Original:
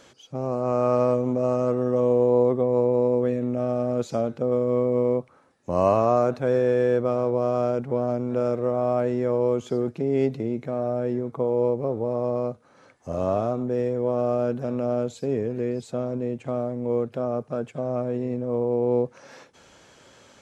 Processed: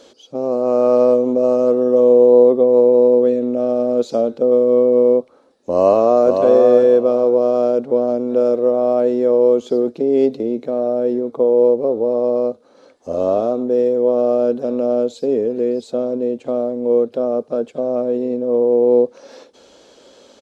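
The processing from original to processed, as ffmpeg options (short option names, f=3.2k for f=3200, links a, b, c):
-filter_complex "[0:a]asplit=2[a][b];[b]afade=t=in:st=5.72:d=0.01,afade=t=out:st=6.33:d=0.01,aecho=0:1:530|1060|1590:0.562341|0.112468|0.0224937[c];[a][c]amix=inputs=2:normalize=0,equalizer=f=125:t=o:w=1:g=-12,equalizer=f=250:t=o:w=1:g=7,equalizer=f=500:t=o:w=1:g=10,equalizer=f=2k:t=o:w=1:g=-5,equalizer=f=4k:t=o:w=1:g=9"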